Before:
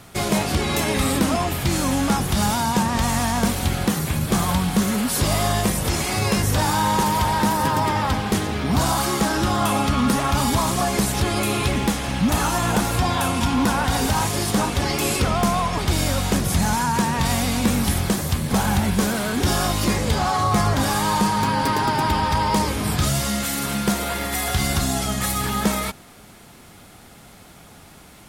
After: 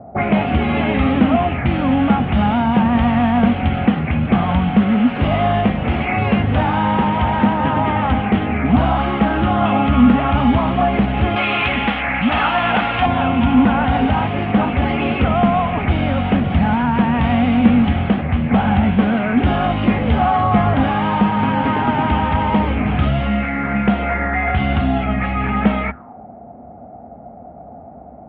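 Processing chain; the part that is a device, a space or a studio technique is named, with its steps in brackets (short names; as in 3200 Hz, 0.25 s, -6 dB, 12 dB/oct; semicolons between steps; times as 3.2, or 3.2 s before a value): envelope filter bass rig (envelope low-pass 610–3100 Hz up, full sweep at -18.5 dBFS; speaker cabinet 67–2100 Hz, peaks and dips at 68 Hz +9 dB, 240 Hz +9 dB, 370 Hz -4 dB, 740 Hz +6 dB, 1000 Hz -5 dB, 1700 Hz -4 dB); 11.36–13.06 tilt shelf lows -8.5 dB, about 660 Hz; gain +3 dB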